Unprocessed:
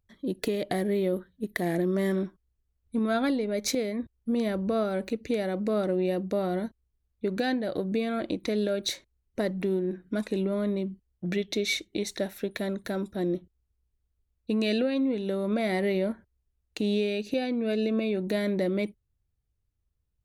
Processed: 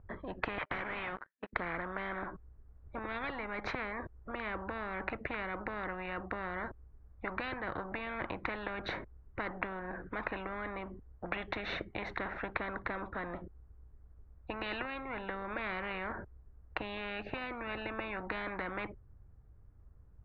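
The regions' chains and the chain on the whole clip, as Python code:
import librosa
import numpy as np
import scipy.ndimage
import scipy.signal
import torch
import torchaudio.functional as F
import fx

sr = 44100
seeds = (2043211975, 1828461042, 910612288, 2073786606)

y = fx.chain(x, sr, fx.ladder_bandpass(hz=2700.0, resonance_pct=30),
    fx.leveller(passes=5), at=(0.58, 1.53))
y = scipy.signal.sosfilt(scipy.signal.butter(4, 1500.0, 'lowpass', fs=sr, output='sos'), y)
y = fx.spectral_comp(y, sr, ratio=10.0)
y = y * librosa.db_to_amplitude(1.5)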